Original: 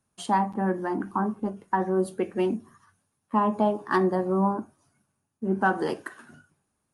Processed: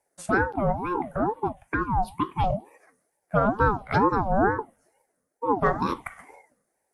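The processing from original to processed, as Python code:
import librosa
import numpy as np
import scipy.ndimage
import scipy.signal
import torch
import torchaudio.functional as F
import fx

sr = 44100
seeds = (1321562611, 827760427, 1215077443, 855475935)

y = fx.steep_highpass(x, sr, hz=260.0, slope=48, at=(1.52, 2.44))
y = fx.env_phaser(y, sr, low_hz=490.0, high_hz=2300.0, full_db=-19.5)
y = fx.ring_lfo(y, sr, carrier_hz=530.0, swing_pct=35, hz=2.2)
y = y * 10.0 ** (5.5 / 20.0)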